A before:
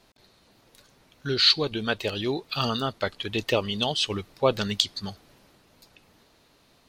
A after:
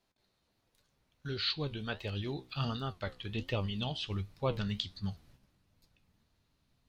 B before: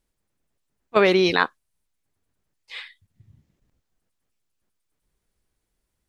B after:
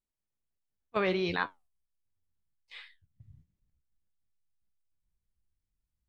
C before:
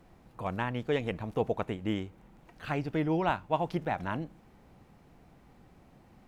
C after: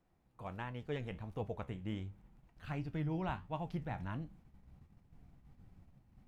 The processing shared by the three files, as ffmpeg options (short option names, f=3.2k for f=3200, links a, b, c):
-filter_complex "[0:a]asubboost=boost=5:cutoff=180,agate=range=-7dB:threshold=-48dB:ratio=16:detection=peak,acrossover=split=4500[a][b];[b]acompressor=threshold=-49dB:ratio=4:attack=1:release=60[c];[a][c]amix=inputs=2:normalize=0,flanger=delay=9.9:depth=6.2:regen=68:speed=1.4:shape=sinusoidal,volume=-6.5dB"